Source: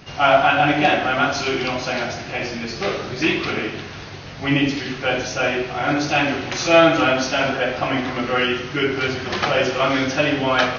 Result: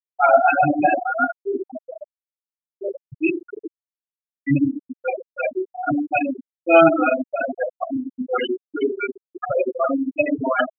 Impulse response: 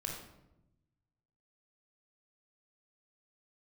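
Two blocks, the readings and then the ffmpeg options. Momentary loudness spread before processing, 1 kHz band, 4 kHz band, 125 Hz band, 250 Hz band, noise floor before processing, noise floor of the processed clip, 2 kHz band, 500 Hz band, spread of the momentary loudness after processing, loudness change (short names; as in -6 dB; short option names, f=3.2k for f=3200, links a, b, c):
11 LU, -1.0 dB, -17.5 dB, -6.5 dB, -0.5 dB, -34 dBFS, under -85 dBFS, -6.0 dB, -0.5 dB, 17 LU, -1.5 dB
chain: -af "afftfilt=real='re*gte(hypot(re,im),0.501)':imag='im*gte(hypot(re,im),0.501)':win_size=1024:overlap=0.75,volume=1.5dB"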